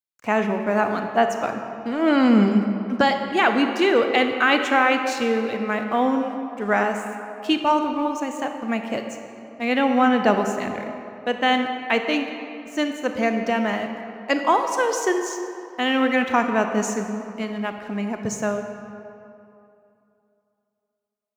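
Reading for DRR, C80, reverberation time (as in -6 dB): 5.5 dB, 7.0 dB, 2.7 s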